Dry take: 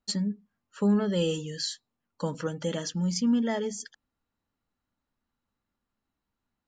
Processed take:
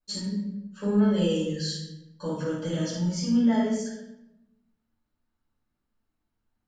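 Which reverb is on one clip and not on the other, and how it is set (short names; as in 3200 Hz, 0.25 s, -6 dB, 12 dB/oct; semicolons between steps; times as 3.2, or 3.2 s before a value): shoebox room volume 300 m³, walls mixed, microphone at 5.2 m; gain -12.5 dB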